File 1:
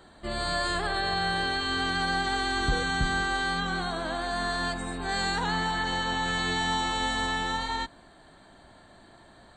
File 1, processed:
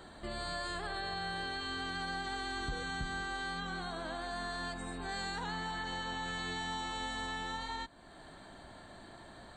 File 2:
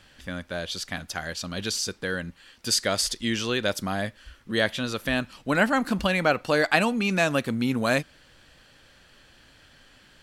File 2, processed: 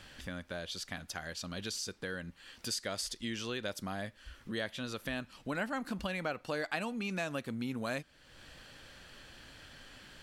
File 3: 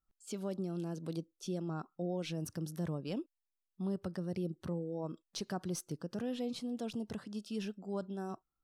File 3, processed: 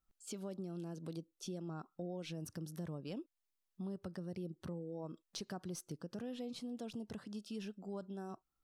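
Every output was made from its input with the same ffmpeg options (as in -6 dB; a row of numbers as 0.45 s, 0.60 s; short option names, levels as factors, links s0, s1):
-af "acompressor=threshold=0.00398:ratio=2,volume=1.19"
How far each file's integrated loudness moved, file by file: -10.5 LU, -12.5 LU, -5.5 LU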